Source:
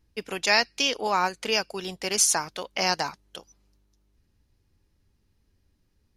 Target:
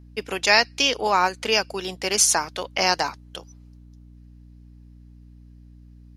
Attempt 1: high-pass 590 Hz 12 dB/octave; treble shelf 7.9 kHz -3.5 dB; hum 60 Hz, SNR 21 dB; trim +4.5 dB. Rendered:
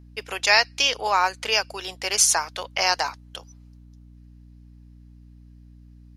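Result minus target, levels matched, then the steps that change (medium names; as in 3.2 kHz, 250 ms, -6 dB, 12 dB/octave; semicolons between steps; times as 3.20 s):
250 Hz band -9.5 dB
change: high-pass 200 Hz 12 dB/octave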